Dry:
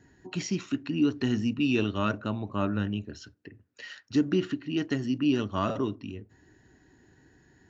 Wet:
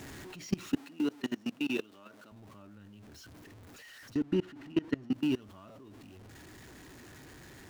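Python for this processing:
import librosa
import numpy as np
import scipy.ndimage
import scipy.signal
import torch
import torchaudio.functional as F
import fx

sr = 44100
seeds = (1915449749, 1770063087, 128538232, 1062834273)

y = x + 0.5 * 10.0 ** (-33.5 / 20.0) * np.sign(x)
y = fx.level_steps(y, sr, step_db=24)
y = fx.lowpass(y, sr, hz=fx.line((4.15, 2800.0), (5.12, 1900.0)), slope=6, at=(4.15, 5.12), fade=0.02)
y = fx.rider(y, sr, range_db=3, speed_s=0.5)
y = fx.highpass(y, sr, hz=260.0, slope=12, at=(0.76, 2.32))
y = y * 10.0 ** (-1.5 / 20.0)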